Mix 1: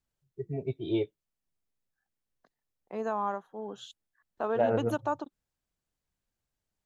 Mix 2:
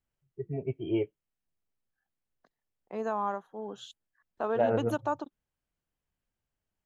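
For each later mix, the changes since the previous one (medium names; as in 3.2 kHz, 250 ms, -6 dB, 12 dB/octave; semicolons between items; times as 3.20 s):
first voice: add brick-wall FIR low-pass 3.3 kHz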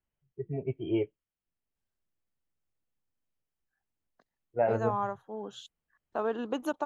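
second voice: entry +1.75 s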